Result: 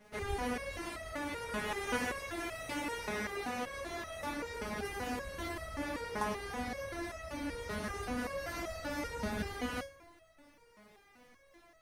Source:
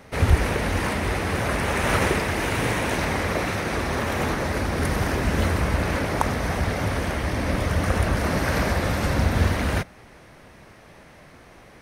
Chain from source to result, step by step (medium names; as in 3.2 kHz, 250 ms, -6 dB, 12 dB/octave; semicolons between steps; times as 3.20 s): crackle 460 per s -49 dBFS; FDN reverb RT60 1.6 s, low-frequency decay 0.85×, high-frequency decay 0.65×, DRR 12 dB; resonator arpeggio 5.2 Hz 210–650 Hz; trim +1 dB